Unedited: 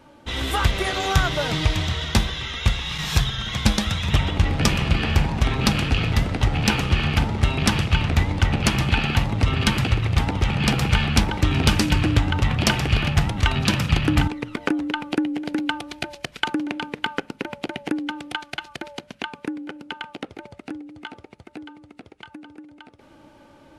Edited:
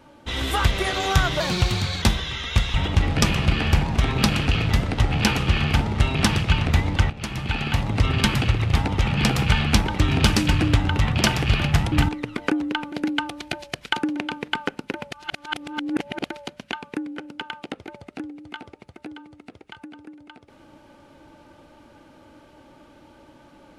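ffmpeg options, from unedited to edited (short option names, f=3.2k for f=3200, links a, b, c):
-filter_complex "[0:a]asplit=9[a][b][c][d][e][f][g][h][i];[a]atrim=end=1.404[j];[b]atrim=start=1.4:end=2.12,asetpts=PTS-STARTPTS,asetrate=51156,aresample=44100,atrim=end_sample=27372,asetpts=PTS-STARTPTS[k];[c]atrim=start=2.116:end=2.842[l];[d]atrim=start=4.168:end=8.53,asetpts=PTS-STARTPTS,afade=t=out:st=4.358:d=0.004:c=hsin:silence=0.149624[m];[e]atrim=start=8.53:end=13.352,asetpts=PTS-STARTPTS,afade=t=in:d=0.88:silence=0.149624[n];[f]atrim=start=14.108:end=15.112[o];[g]atrim=start=15.428:end=17.622[p];[h]atrim=start=17.618:end=18.772,asetpts=PTS-STARTPTS,areverse[q];[i]atrim=start=18.768[r];[j][k]acrossfade=d=0.004:c1=hsin:c2=hsin[s];[s][l]acrossfade=d=0.004:c1=hsin:c2=hsin[t];[m][n]concat=n=2:v=0:a=1[u];[t][u]acrossfade=d=0.004:c1=hsin:c2=hsin[v];[v][o]acrossfade=d=0.004:c1=hsin:c2=hsin[w];[w][p]acrossfade=d=0.004:c1=hsin:c2=hsin[x];[x][q]acrossfade=d=0.004:c1=hsin:c2=hsin[y];[y][r]acrossfade=d=0.004:c1=hsin:c2=hsin"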